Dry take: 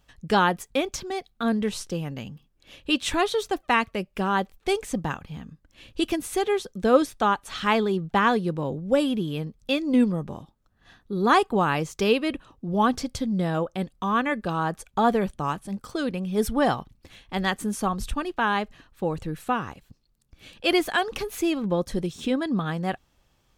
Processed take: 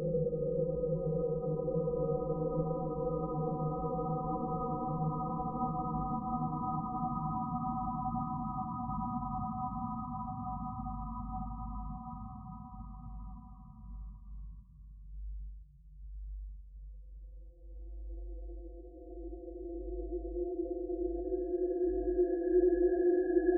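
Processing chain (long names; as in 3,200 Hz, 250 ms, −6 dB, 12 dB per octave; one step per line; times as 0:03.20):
mains hum 50 Hz, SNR 18 dB
spectral peaks only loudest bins 2
extreme stretch with random phases 15×, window 1.00 s, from 0:19.05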